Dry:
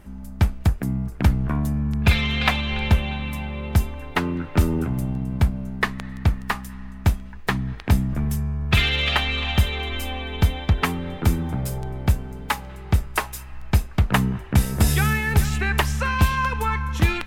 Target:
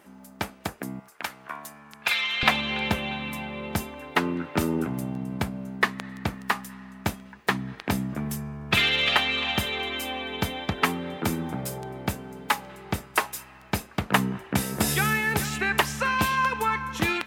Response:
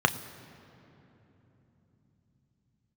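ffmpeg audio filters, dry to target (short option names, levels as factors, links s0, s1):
-af "asetnsamples=n=441:p=0,asendcmd='1 highpass f 950;2.43 highpass f 210',highpass=340"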